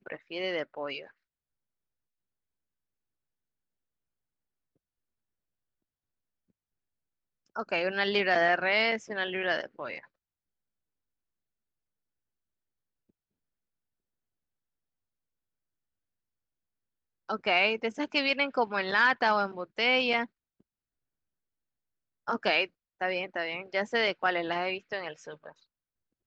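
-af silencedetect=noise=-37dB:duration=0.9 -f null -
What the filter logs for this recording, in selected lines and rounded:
silence_start: 1.04
silence_end: 7.56 | silence_duration: 6.52
silence_start: 9.99
silence_end: 17.29 | silence_duration: 7.31
silence_start: 20.25
silence_end: 22.28 | silence_duration: 2.03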